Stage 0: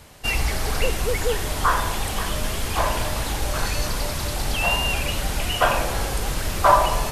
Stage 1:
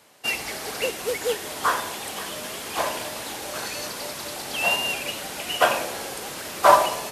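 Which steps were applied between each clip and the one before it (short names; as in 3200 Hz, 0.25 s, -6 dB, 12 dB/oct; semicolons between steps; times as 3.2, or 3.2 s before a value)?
HPF 270 Hz 12 dB/oct; dynamic EQ 1100 Hz, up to -4 dB, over -34 dBFS, Q 1.2; upward expander 1.5:1, over -36 dBFS; gain +4.5 dB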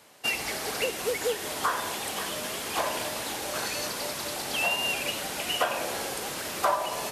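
compressor 4:1, threshold -24 dBFS, peak gain reduction 13 dB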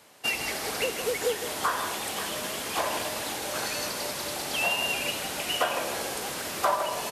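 echo 0.158 s -9.5 dB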